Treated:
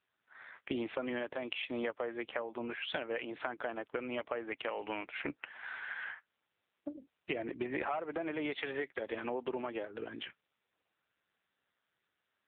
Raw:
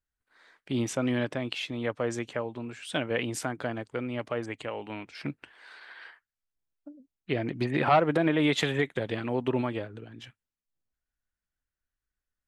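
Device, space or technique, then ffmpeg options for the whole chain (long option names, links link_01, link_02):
voicemail: -filter_complex "[0:a]asettb=1/sr,asplit=3[link_01][link_02][link_03];[link_01]atrim=end=6.904[link_04];[link_02]atrim=start=6.9:end=7.75,asetpts=PTS-STARTPTS,afade=type=in:duration=0.004:curve=qsin,afade=type=out:start_time=0.846:duration=0.004:curve=qsin,highpass=frequency=50:width=0.5412,highpass=frequency=50:width=1.3066[link_05];[link_03]atrim=start=7.746[link_06];[link_04][link_05]acrossfade=duration=0.004:curve1=hsin:curve2=qsin[link_07];[link_07][link_06]acrossfade=duration=0.004:curve1=qsin:curve2=hsin,highpass=390,lowpass=3100,acompressor=threshold=-43dB:ratio=10,volume=10dB" -ar 8000 -c:a libopencore_amrnb -b:a 6700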